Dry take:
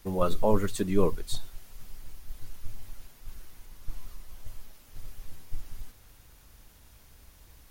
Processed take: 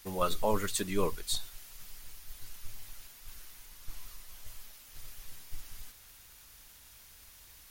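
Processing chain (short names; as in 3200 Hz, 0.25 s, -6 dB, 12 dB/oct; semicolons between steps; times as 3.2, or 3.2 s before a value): tilt shelf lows -7 dB; gain -1.5 dB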